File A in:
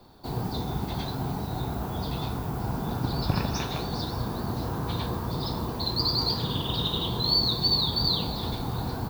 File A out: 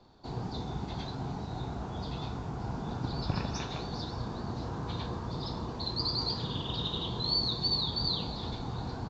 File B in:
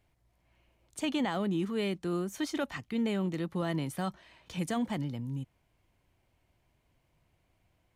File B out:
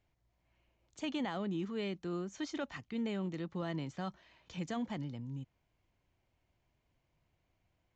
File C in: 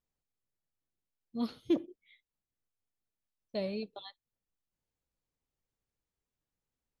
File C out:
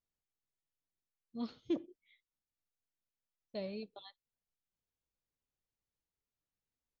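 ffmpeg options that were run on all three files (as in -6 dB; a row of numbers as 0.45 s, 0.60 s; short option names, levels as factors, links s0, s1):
-af "aresample=16000,aresample=44100,volume=0.501"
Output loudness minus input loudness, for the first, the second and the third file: -6.0 LU, -6.0 LU, -6.0 LU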